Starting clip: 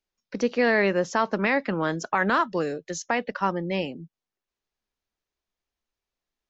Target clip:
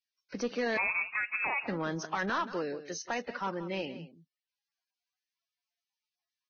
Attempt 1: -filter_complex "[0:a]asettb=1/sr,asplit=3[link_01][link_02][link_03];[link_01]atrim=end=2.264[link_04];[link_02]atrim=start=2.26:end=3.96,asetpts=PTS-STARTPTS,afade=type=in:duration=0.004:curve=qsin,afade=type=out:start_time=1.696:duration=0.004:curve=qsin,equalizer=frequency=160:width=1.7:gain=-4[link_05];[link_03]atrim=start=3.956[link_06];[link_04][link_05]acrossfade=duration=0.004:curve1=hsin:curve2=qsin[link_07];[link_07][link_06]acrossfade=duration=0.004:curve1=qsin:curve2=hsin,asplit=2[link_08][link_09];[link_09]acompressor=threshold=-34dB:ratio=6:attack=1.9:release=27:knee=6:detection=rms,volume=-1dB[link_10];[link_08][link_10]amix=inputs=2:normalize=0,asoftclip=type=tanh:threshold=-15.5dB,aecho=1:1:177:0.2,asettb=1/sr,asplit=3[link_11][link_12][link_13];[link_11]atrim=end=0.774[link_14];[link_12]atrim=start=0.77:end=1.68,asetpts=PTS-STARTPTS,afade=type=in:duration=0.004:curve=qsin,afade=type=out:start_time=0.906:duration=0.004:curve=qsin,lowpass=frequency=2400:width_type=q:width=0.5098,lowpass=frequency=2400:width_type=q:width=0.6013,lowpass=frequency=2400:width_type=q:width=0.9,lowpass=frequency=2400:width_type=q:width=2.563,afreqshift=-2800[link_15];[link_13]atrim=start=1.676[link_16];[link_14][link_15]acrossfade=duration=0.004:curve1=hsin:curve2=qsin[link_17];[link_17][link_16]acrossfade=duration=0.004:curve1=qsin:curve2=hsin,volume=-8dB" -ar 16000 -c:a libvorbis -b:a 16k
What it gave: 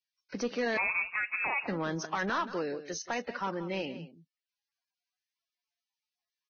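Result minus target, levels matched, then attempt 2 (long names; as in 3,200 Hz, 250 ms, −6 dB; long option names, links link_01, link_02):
downward compressor: peak gain reduction −6 dB
-filter_complex "[0:a]asettb=1/sr,asplit=3[link_01][link_02][link_03];[link_01]atrim=end=2.264[link_04];[link_02]atrim=start=2.26:end=3.96,asetpts=PTS-STARTPTS,afade=type=in:duration=0.004:curve=qsin,afade=type=out:start_time=1.696:duration=0.004:curve=qsin,equalizer=frequency=160:width=1.7:gain=-4[link_05];[link_03]atrim=start=3.956[link_06];[link_04][link_05]acrossfade=duration=0.004:curve1=hsin:curve2=qsin[link_07];[link_07][link_06]acrossfade=duration=0.004:curve1=qsin:curve2=hsin,asplit=2[link_08][link_09];[link_09]acompressor=threshold=-41dB:ratio=6:attack=1.9:release=27:knee=6:detection=rms,volume=-1dB[link_10];[link_08][link_10]amix=inputs=2:normalize=0,asoftclip=type=tanh:threshold=-15.5dB,aecho=1:1:177:0.2,asettb=1/sr,asplit=3[link_11][link_12][link_13];[link_11]atrim=end=0.774[link_14];[link_12]atrim=start=0.77:end=1.68,asetpts=PTS-STARTPTS,afade=type=in:duration=0.004:curve=qsin,afade=type=out:start_time=0.906:duration=0.004:curve=qsin,lowpass=frequency=2400:width_type=q:width=0.5098,lowpass=frequency=2400:width_type=q:width=0.6013,lowpass=frequency=2400:width_type=q:width=0.9,lowpass=frequency=2400:width_type=q:width=2.563,afreqshift=-2800[link_15];[link_13]atrim=start=1.676[link_16];[link_14][link_15]acrossfade=duration=0.004:curve1=hsin:curve2=qsin[link_17];[link_17][link_16]acrossfade=duration=0.004:curve1=qsin:curve2=hsin,volume=-8dB" -ar 16000 -c:a libvorbis -b:a 16k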